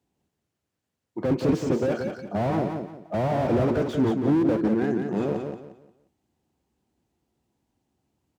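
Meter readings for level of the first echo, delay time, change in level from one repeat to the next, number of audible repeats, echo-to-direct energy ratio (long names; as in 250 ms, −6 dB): −6.0 dB, 177 ms, −11.0 dB, 3, −5.5 dB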